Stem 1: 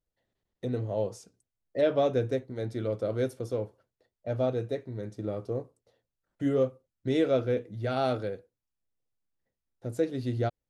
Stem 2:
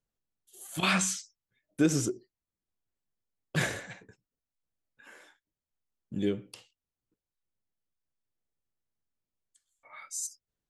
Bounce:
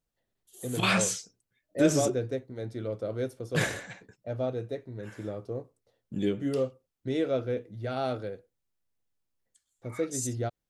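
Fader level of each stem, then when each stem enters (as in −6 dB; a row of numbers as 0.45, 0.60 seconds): −3.0, +1.0 decibels; 0.00, 0.00 seconds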